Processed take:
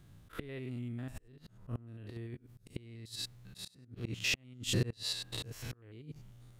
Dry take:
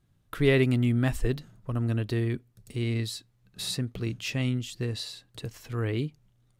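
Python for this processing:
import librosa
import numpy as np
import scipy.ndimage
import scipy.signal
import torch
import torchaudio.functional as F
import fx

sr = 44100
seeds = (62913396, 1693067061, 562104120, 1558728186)

y = fx.spec_steps(x, sr, hold_ms=100)
y = fx.gate_flip(y, sr, shuts_db=-23.0, range_db=-27)
y = fx.auto_swell(y, sr, attack_ms=454.0)
y = y * librosa.db_to_amplitude(11.0)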